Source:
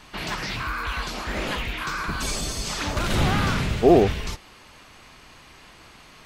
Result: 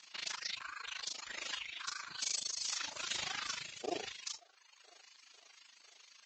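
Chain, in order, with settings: feedback echo behind a band-pass 501 ms, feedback 60%, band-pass 1 kHz, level -20 dB; reverb removal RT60 1.2 s; differentiator; gated-style reverb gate 80 ms falling, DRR 9 dB; AM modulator 26 Hz, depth 95%; crackling interface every 0.13 s, samples 256, zero, from 0.48 s; trim +3 dB; Vorbis 32 kbps 16 kHz

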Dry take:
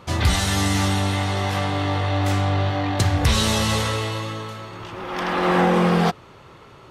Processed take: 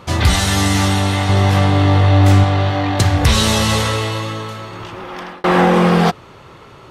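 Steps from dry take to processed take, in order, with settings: 1.29–2.44 s: bass shelf 340 Hz +7.5 dB; 4.81–5.44 s: fade out; trim +5.5 dB

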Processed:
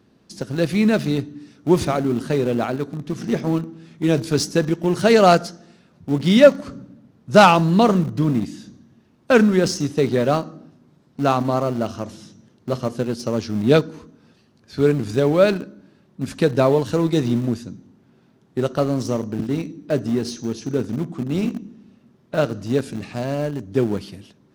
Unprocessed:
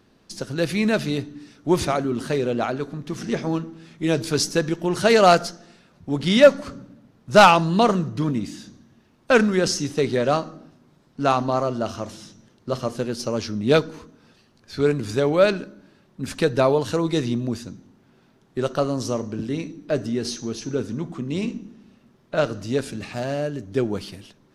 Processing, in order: high-pass 40 Hz; peaking EQ 180 Hz +6 dB 2.9 oct; in parallel at -11.5 dB: small samples zeroed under -19.5 dBFS; on the sum: trim -3 dB

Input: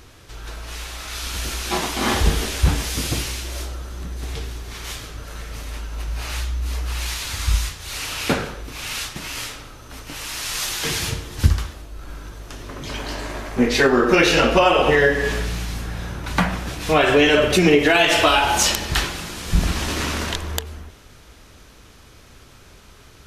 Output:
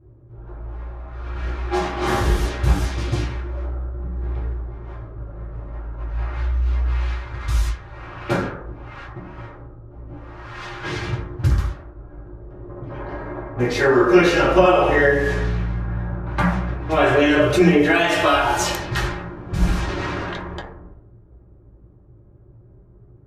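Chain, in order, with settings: level-controlled noise filter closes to 320 Hz, open at -16.5 dBFS; reverberation RT60 0.55 s, pre-delay 4 ms, DRR -7 dB; trim -8.5 dB

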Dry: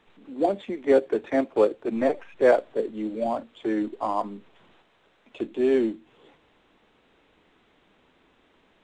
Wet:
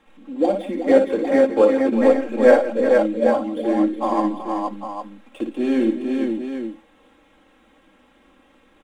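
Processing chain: median filter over 9 samples; comb 3.7 ms, depth 80%; on a send: multi-tap echo 57/168/372/466/802 ms -6.5/-15.5/-11/-3.5/-8 dB; on the sum: trim +2 dB

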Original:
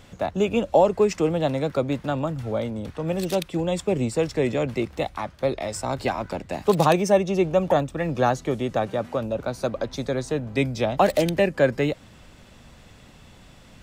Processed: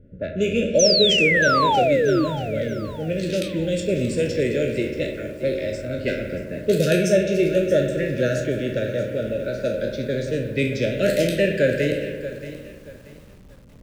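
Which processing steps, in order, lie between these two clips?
spectral sustain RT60 0.40 s; Chebyshev band-stop 630–1400 Hz, order 5; peaking EQ 2.6 kHz +2.5 dB 0.25 oct; spring tank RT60 2.1 s, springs 56 ms, chirp 45 ms, DRR 5.5 dB; painted sound fall, 0.79–2.25 s, 290–6300 Hz -19 dBFS; level-controlled noise filter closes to 440 Hz, open at -18 dBFS; bit-crushed delay 630 ms, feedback 35%, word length 7-bit, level -13.5 dB

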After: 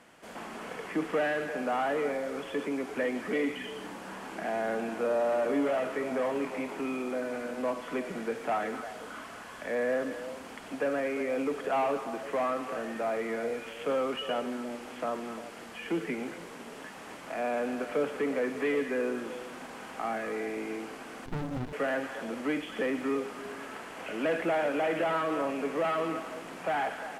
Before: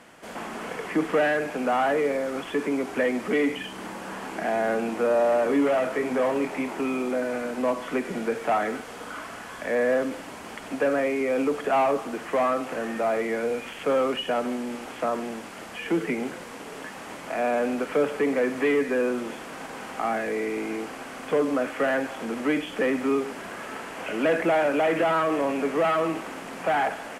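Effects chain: repeats whose band climbs or falls 116 ms, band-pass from 3.7 kHz, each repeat -1.4 oct, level -5 dB; 21.26–21.73 s: sliding maximum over 65 samples; trim -6.5 dB

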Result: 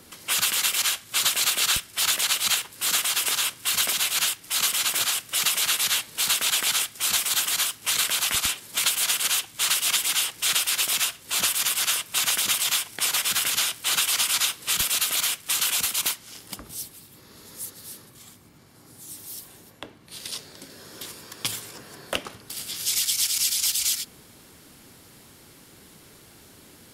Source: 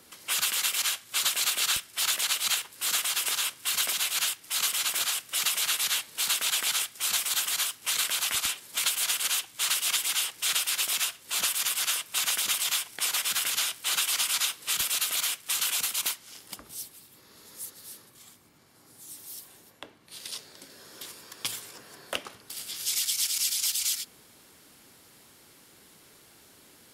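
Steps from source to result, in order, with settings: bass shelf 260 Hz +8.5 dB; trim +4 dB

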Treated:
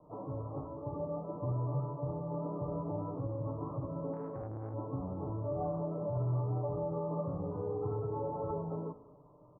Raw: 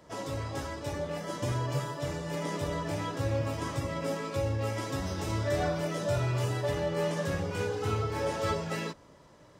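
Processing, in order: steep low-pass 1.2 kHz 96 dB/octave; peak limiter -25 dBFS, peak gain reduction 6 dB; comb 6.7 ms, depth 47%; on a send at -11.5 dB: reverberation RT60 1.4 s, pre-delay 4 ms; 4.13–4.74 s: on the sum: transformer saturation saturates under 400 Hz; trim -4.5 dB

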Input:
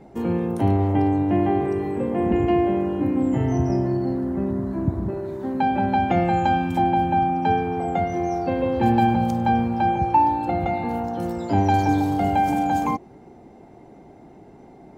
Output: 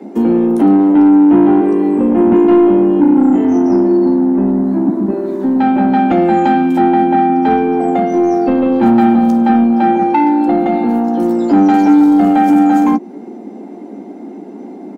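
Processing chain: steep high-pass 180 Hz 96 dB/octave; peaking EQ 270 Hz +12 dB 1.2 oct; in parallel at -0.5 dB: compression, threshold -23 dBFS, peak gain reduction 15 dB; on the sum: saturation -8 dBFS, distortion -16 dB; doubling 14 ms -10.5 dB; trim +3 dB

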